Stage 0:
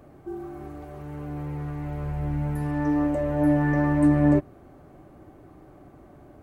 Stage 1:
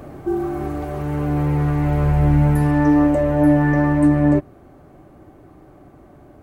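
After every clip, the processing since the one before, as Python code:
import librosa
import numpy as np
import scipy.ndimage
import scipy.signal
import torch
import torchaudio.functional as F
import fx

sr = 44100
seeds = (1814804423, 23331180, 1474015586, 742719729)

y = fx.rider(x, sr, range_db=5, speed_s=0.5)
y = F.gain(torch.from_numpy(y), 8.5).numpy()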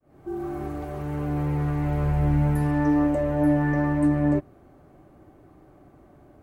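y = fx.fade_in_head(x, sr, length_s=0.51)
y = F.gain(torch.from_numpy(y), -6.5).numpy()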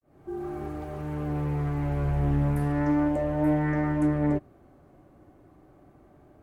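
y = fx.vibrato(x, sr, rate_hz=0.34, depth_cents=44.0)
y = fx.doppler_dist(y, sr, depth_ms=0.27)
y = F.gain(torch.from_numpy(y), -3.0).numpy()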